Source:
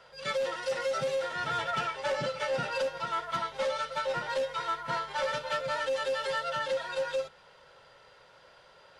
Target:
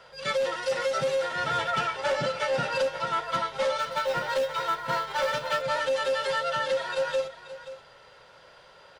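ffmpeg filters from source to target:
ffmpeg -i in.wav -filter_complex "[0:a]asettb=1/sr,asplit=3[link_01][link_02][link_03];[link_01]atrim=end=3.794[link_04];[link_02]atrim=start=3.79:end=5.62,asetpts=PTS-STARTPTS,afade=type=in:duration=0.004:curve=qsin,afade=type=out:start_time=1.826:duration=0.004:curve=qsin,acrusher=bits=7:mode=log:mix=0:aa=0.000001[link_05];[link_03]atrim=start=5.616[link_06];[link_04][link_05]acrossfade=duration=0.004:curve1=hsin:curve2=qsin[link_07];[link_07][link_06]acrossfade=duration=0.004:curve1=qsin:curve2=hsin,asplit=2[link_08][link_09];[link_09]aecho=0:1:529:0.2[link_10];[link_08][link_10]amix=inputs=2:normalize=0,volume=4dB" out.wav

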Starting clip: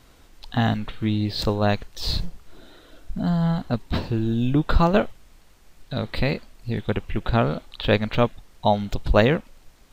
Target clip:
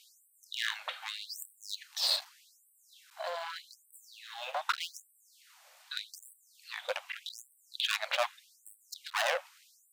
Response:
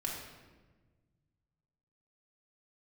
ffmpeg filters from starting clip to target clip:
-af "asoftclip=type=hard:threshold=-21.5dB,afftfilt=real='re*gte(b*sr/1024,500*pow(7900/500,0.5+0.5*sin(2*PI*0.83*pts/sr)))':imag='im*gte(b*sr/1024,500*pow(7900/500,0.5+0.5*sin(2*PI*0.83*pts/sr)))':win_size=1024:overlap=0.75,volume=1.5dB"

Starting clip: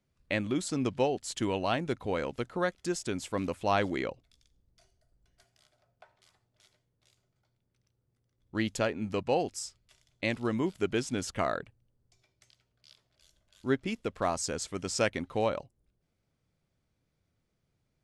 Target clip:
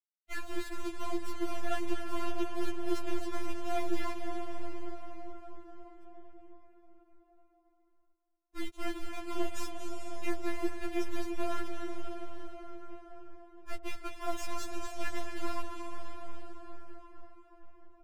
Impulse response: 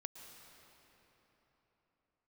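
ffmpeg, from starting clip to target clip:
-filter_complex "[0:a]aeval=exprs='if(lt(val(0),0),0.251*val(0),val(0))':channel_layout=same,lowpass=3100,areverse,acompressor=threshold=-41dB:ratio=12,areverse,aeval=exprs='val(0)*gte(abs(val(0)),0.00473)':channel_layout=same,agate=range=-33dB:threshold=-52dB:ratio=3:detection=peak,aecho=1:1:233|466|699|932|1165|1398:0.2|0.118|0.0695|0.041|0.0242|0.0143[link_01];[1:a]atrim=start_sample=2205,asetrate=24255,aresample=44100[link_02];[link_01][link_02]afir=irnorm=-1:irlink=0,afftfilt=real='re*4*eq(mod(b,16),0)':imag='im*4*eq(mod(b,16),0)':win_size=2048:overlap=0.75,volume=12.5dB"

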